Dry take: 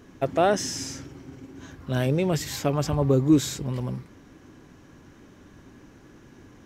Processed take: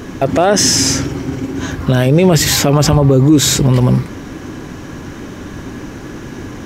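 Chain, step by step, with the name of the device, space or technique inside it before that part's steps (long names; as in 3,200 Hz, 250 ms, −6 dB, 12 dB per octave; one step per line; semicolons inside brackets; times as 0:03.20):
loud club master (downward compressor 1.5 to 1, threshold −28 dBFS, peak gain reduction 5.5 dB; hard clipping −14.5 dBFS, distortion −39 dB; boost into a limiter +23 dB)
level −1 dB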